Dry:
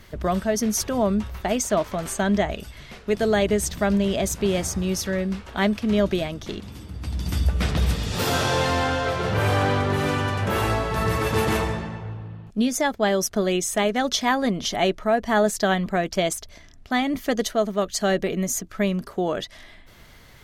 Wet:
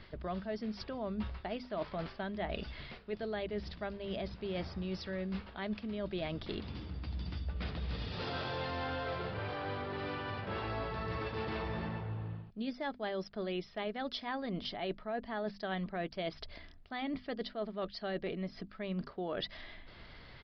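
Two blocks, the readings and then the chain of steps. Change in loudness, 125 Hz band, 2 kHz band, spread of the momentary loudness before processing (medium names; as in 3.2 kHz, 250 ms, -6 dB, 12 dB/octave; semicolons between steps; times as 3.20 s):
-16.0 dB, -15.0 dB, -15.5 dB, 9 LU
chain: reverse; compression 10:1, threshold -31 dBFS, peak gain reduction 16 dB; reverse; hum notches 50/100/150/200/250 Hz; resampled via 11.025 kHz; trim -3.5 dB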